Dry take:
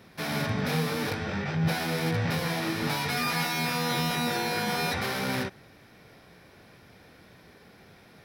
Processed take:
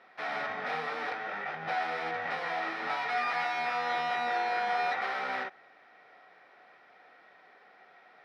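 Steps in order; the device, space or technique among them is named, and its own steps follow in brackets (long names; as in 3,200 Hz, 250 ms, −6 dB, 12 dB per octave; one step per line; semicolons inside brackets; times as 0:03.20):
tin-can telephone (band-pass filter 610–2,500 Hz; hollow resonant body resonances 740/1,300/1,900 Hz, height 10 dB, ringing for 45 ms)
level −2 dB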